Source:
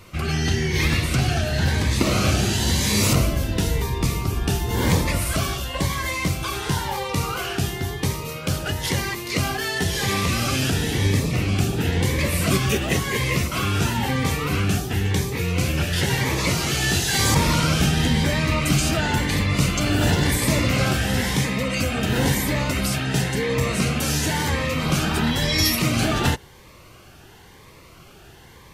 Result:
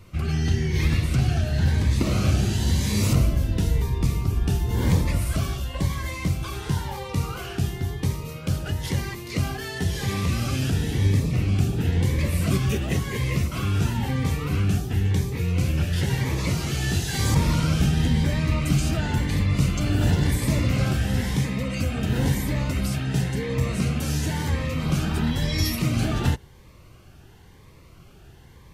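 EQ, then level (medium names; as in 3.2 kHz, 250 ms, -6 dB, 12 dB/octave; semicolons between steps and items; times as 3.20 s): bass shelf 250 Hz +11 dB; -8.5 dB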